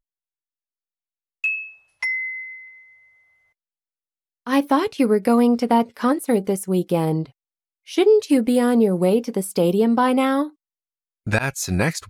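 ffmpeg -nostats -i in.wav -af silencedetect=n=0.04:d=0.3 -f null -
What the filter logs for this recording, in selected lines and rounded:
silence_start: 0.00
silence_end: 1.44 | silence_duration: 1.44
silence_start: 1.61
silence_end: 2.03 | silence_duration: 0.42
silence_start: 2.37
silence_end: 4.47 | silence_duration: 2.10
silence_start: 7.23
silence_end: 7.91 | silence_duration: 0.67
silence_start: 10.47
silence_end: 11.27 | silence_duration: 0.80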